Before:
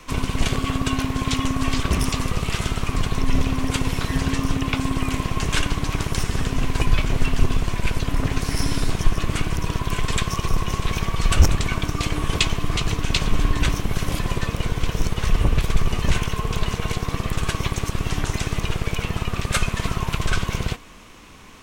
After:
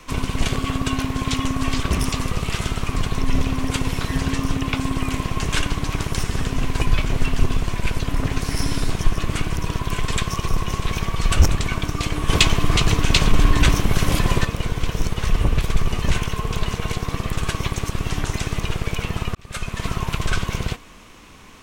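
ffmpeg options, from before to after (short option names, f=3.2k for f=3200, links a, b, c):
-filter_complex "[0:a]asettb=1/sr,asplit=3[a][b][c];[a]atrim=end=12.284[d];[b]atrim=start=12.28:end=14.45,asetpts=PTS-STARTPTS,afade=t=in:d=0.004:c=qsin,afade=t=out:st=2.166:d=0.004:c=qsin,acontrast=44[e];[c]atrim=start=14.446[f];[d][e]acrossfade=d=0.004:c1=hsin:c2=qsin[g];[g][f]acrossfade=d=0.004:c1=qsin:c2=hsin,asplit=2[h][i];[h]atrim=end=19.35,asetpts=PTS-STARTPTS,afade=t=out:st=19.346:d=0.004:c=hsin[j];[i]atrim=start=19.35,asetpts=PTS-STARTPTS,afade=t=in:d=0.57[k];[j][k]concat=n=2:v=0:a=1"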